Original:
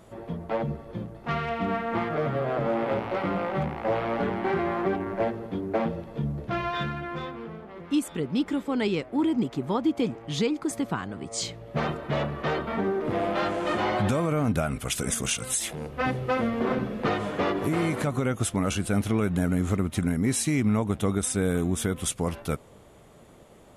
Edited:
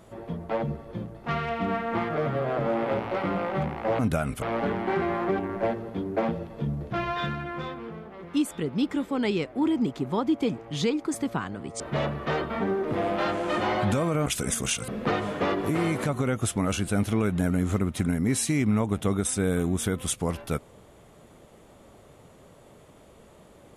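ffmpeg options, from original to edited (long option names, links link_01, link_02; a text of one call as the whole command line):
ffmpeg -i in.wav -filter_complex "[0:a]asplit=6[link_01][link_02][link_03][link_04][link_05][link_06];[link_01]atrim=end=3.992[link_07];[link_02]atrim=start=14.428:end=14.862[link_08];[link_03]atrim=start=3.988:end=11.372[link_09];[link_04]atrim=start=11.968:end=14.432[link_10];[link_05]atrim=start=14.858:end=15.482[link_11];[link_06]atrim=start=16.858[link_12];[link_07][link_08]acrossfade=duration=0.004:curve1=hsin:curve2=hsin[link_13];[link_13][link_09]acrossfade=duration=0.004:curve1=hsin:curve2=hsin[link_14];[link_14][link_10]acrossfade=duration=0.004:curve1=hsin:curve2=hsin[link_15];[link_15][link_11]acrossfade=duration=0.004:curve1=hsin:curve2=hsin[link_16];[link_16][link_12]acrossfade=duration=0.004:curve1=hsin:curve2=hsin" out.wav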